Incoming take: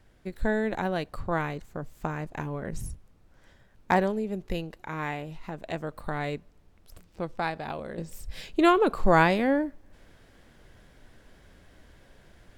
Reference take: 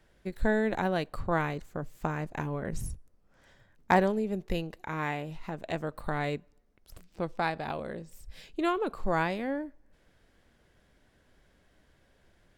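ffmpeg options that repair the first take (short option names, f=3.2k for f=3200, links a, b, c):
-af "agate=range=-21dB:threshold=-49dB,asetnsamples=n=441:p=0,asendcmd='7.98 volume volume -8.5dB',volume=0dB"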